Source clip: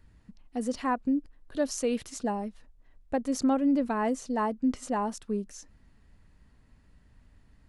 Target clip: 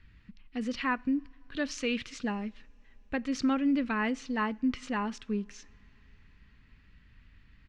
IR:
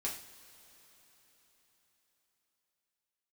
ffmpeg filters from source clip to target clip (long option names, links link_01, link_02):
-filter_complex "[0:a]firequalizer=gain_entry='entry(160,0);entry(700,-11);entry(1200,2);entry(2400,10);entry(10000,-22)':delay=0.05:min_phase=1,asplit=2[link_01][link_02];[1:a]atrim=start_sample=2205[link_03];[link_02][link_03]afir=irnorm=-1:irlink=0,volume=-20dB[link_04];[link_01][link_04]amix=inputs=2:normalize=0"